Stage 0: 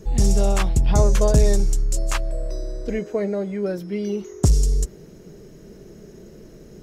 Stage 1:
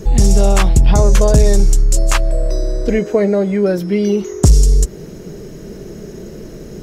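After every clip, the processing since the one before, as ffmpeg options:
ffmpeg -i in.wav -filter_complex "[0:a]asplit=2[link_01][link_02];[link_02]acompressor=threshold=-25dB:ratio=6,volume=-1dB[link_03];[link_01][link_03]amix=inputs=2:normalize=0,alimiter=level_in=7.5dB:limit=-1dB:release=50:level=0:latency=1,volume=-1dB" out.wav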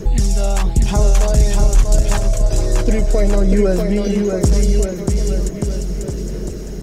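ffmpeg -i in.wav -filter_complex "[0:a]acrossover=split=1300|3700[link_01][link_02][link_03];[link_01]acompressor=threshold=-15dB:ratio=4[link_04];[link_02]acompressor=threshold=-35dB:ratio=4[link_05];[link_03]acompressor=threshold=-28dB:ratio=4[link_06];[link_04][link_05][link_06]amix=inputs=3:normalize=0,aphaser=in_gain=1:out_gain=1:delay=1.5:decay=0.35:speed=1.1:type=sinusoidal,asplit=2[link_07][link_08];[link_08]aecho=0:1:640|1184|1646|2039|2374:0.631|0.398|0.251|0.158|0.1[link_09];[link_07][link_09]amix=inputs=2:normalize=0,volume=-1dB" out.wav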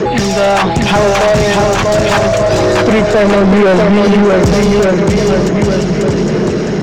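ffmpeg -i in.wav -filter_complex "[0:a]highpass=130,lowpass=4300,asubboost=boost=2.5:cutoff=220,asplit=2[link_01][link_02];[link_02]highpass=frequency=720:poles=1,volume=31dB,asoftclip=type=tanh:threshold=-2dB[link_03];[link_01][link_03]amix=inputs=2:normalize=0,lowpass=frequency=2400:poles=1,volume=-6dB,volume=1dB" out.wav

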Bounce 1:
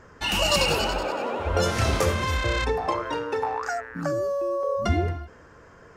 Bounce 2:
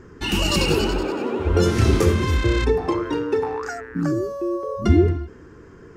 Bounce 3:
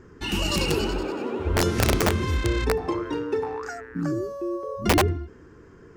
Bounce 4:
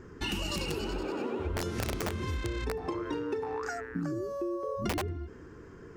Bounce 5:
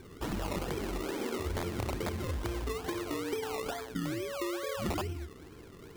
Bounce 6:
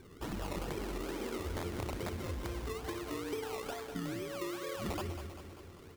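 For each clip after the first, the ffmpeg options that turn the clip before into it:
ffmpeg -i in.wav -af "lowshelf=frequency=470:width_type=q:width=3:gain=7" out.wav
ffmpeg -i in.wav -af "aeval=exprs='(mod(2.66*val(0)+1,2)-1)/2.66':channel_layout=same,volume=-4.5dB" out.wav
ffmpeg -i in.wav -af "acompressor=threshold=-30dB:ratio=10" out.wav
ffmpeg -i in.wav -af "acrusher=samples=22:mix=1:aa=0.000001:lfo=1:lforange=13.2:lforate=2.3,volume=-1.5dB" out.wav
ffmpeg -i in.wav -af "aecho=1:1:197|394|591|788|985|1182|1379:0.335|0.201|0.121|0.0724|0.0434|0.026|0.0156,volume=-4.5dB" out.wav

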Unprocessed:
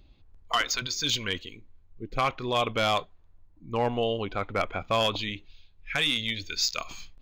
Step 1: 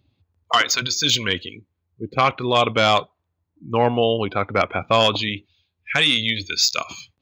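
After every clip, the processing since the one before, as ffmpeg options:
ffmpeg -i in.wav -af "highpass=frequency=86:width=0.5412,highpass=frequency=86:width=1.3066,afftdn=noise_reduction=14:noise_floor=-49,volume=8.5dB" out.wav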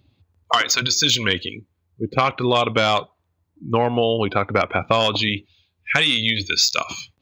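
ffmpeg -i in.wav -af "acompressor=threshold=-19dB:ratio=6,volume=5dB" out.wav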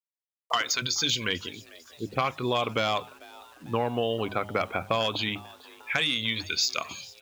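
ffmpeg -i in.wav -filter_complex "[0:a]bandreject=frequency=50:width_type=h:width=6,bandreject=frequency=100:width_type=h:width=6,bandreject=frequency=150:width_type=h:width=6,bandreject=frequency=200:width_type=h:width=6,asplit=5[link_01][link_02][link_03][link_04][link_05];[link_02]adelay=447,afreqshift=150,volume=-22dB[link_06];[link_03]adelay=894,afreqshift=300,volume=-27dB[link_07];[link_04]adelay=1341,afreqshift=450,volume=-32.1dB[link_08];[link_05]adelay=1788,afreqshift=600,volume=-37.1dB[link_09];[link_01][link_06][link_07][link_08][link_09]amix=inputs=5:normalize=0,acrusher=bits=7:mix=0:aa=0.000001,volume=-8.5dB" out.wav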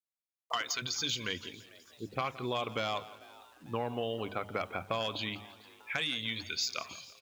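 ffmpeg -i in.wav -af "aecho=1:1:170|340|510:0.133|0.0533|0.0213,volume=-7.5dB" out.wav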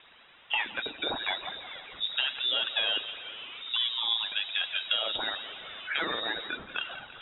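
ffmpeg -i in.wav -af "aeval=exprs='val(0)+0.5*0.00891*sgn(val(0))':channel_layout=same,aphaser=in_gain=1:out_gain=1:delay=3.6:decay=0.44:speed=0.97:type=triangular,lowpass=frequency=3300:width_type=q:width=0.5098,lowpass=frequency=3300:width_type=q:width=0.6013,lowpass=frequency=3300:width_type=q:width=0.9,lowpass=frequency=3300:width_type=q:width=2.563,afreqshift=-3900,volume=2.5dB" out.wav

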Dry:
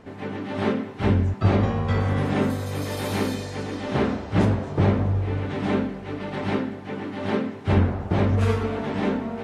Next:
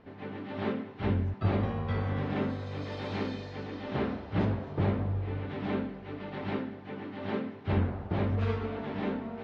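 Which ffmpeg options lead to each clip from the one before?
ffmpeg -i in.wav -af "lowpass=frequency=4500:width=0.5412,lowpass=frequency=4500:width=1.3066,volume=-8.5dB" out.wav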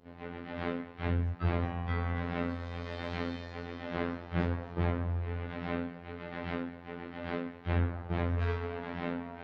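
ffmpeg -i in.wav -af "adynamicequalizer=threshold=0.002:dfrequency=1700:dqfactor=1.1:tfrequency=1700:tqfactor=1.1:attack=5:release=100:ratio=0.375:range=2.5:mode=boostabove:tftype=bell,afftfilt=real='hypot(re,im)*cos(PI*b)':imag='0':win_size=2048:overlap=0.75" out.wav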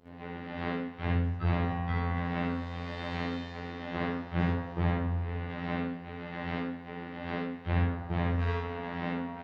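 ffmpeg -i in.wav -af "aecho=1:1:57|76:0.708|0.631" out.wav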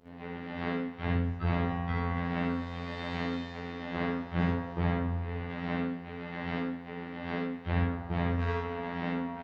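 ffmpeg -i in.wav -filter_complex "[0:a]asplit=2[link_01][link_02];[link_02]adelay=16,volume=-10.5dB[link_03];[link_01][link_03]amix=inputs=2:normalize=0" out.wav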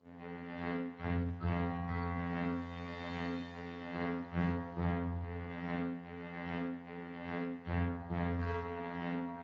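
ffmpeg -i in.wav -af "volume=-5.5dB" -ar 16000 -c:a libspeex -b:a 13k out.spx

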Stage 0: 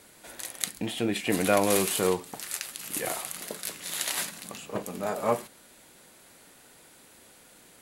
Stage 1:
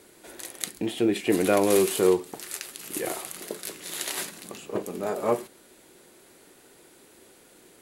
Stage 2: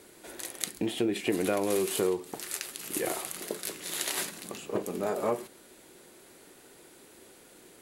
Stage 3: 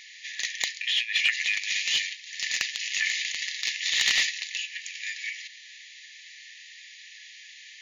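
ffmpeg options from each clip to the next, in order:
ffmpeg -i in.wav -af "equalizer=frequency=370:width_type=o:width=0.64:gain=11,volume=-1.5dB" out.wav
ffmpeg -i in.wav -af "acompressor=threshold=-25dB:ratio=4" out.wav
ffmpeg -i in.wav -filter_complex "[0:a]afftfilt=real='re*between(b*sr/4096,1700,7100)':imag='im*between(b*sr/4096,1700,7100)':win_size=4096:overlap=0.75,asplit=2[link_01][link_02];[link_02]highpass=frequency=720:poles=1,volume=18dB,asoftclip=type=tanh:threshold=-11dB[link_03];[link_01][link_03]amix=inputs=2:normalize=0,lowpass=frequency=2900:poles=1,volume=-6dB,volume=6dB" out.wav

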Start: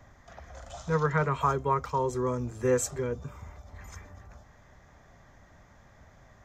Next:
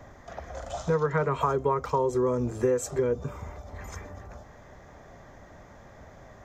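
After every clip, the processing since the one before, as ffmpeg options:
ffmpeg -i in.wav -af "equalizer=frequency=450:width_type=o:width=1.9:gain=7.5,acompressor=threshold=-26dB:ratio=6,volume=4dB" out.wav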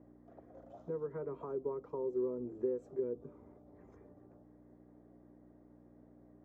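ffmpeg -i in.wav -af "aeval=exprs='val(0)+0.01*(sin(2*PI*60*n/s)+sin(2*PI*2*60*n/s)/2+sin(2*PI*3*60*n/s)/3+sin(2*PI*4*60*n/s)/4+sin(2*PI*5*60*n/s)/5)':channel_layout=same,bandpass=frequency=340:width_type=q:width=2.5:csg=0,volume=-7dB" out.wav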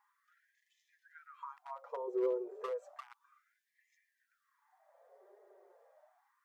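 ffmpeg -i in.wav -af "flanger=delay=4.7:depth=4:regen=35:speed=0.37:shape=triangular,asoftclip=type=hard:threshold=-34.5dB,afftfilt=real='re*gte(b*sr/1024,350*pow(1700/350,0.5+0.5*sin(2*PI*0.32*pts/sr)))':imag='im*gte(b*sr/1024,350*pow(1700/350,0.5+0.5*sin(2*PI*0.32*pts/sr)))':win_size=1024:overlap=0.75,volume=10dB" out.wav

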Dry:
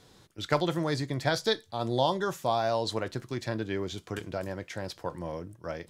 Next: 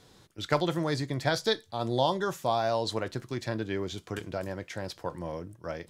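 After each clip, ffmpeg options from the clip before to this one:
ffmpeg -i in.wav -af anull out.wav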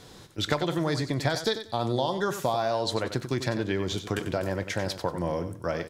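ffmpeg -i in.wav -af "acompressor=threshold=-32dB:ratio=6,aecho=1:1:93|186|279:0.299|0.0597|0.0119,volume=8.5dB" out.wav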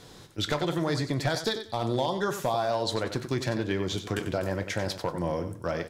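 ffmpeg -i in.wav -af "volume=18dB,asoftclip=hard,volume=-18dB,flanger=delay=5.7:depth=6.3:regen=-78:speed=0.78:shape=triangular,volume=4dB" out.wav

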